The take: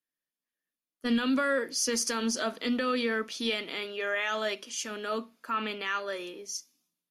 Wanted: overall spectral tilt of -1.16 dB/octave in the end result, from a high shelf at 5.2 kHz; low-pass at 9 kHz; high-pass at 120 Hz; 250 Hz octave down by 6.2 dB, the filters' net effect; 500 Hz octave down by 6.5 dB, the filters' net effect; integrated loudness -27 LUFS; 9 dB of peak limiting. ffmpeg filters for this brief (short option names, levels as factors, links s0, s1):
-af "highpass=120,lowpass=9000,equalizer=f=250:t=o:g=-5,equalizer=f=500:t=o:g=-6.5,highshelf=f=5200:g=-3,volume=3.76,alimiter=limit=0.133:level=0:latency=1"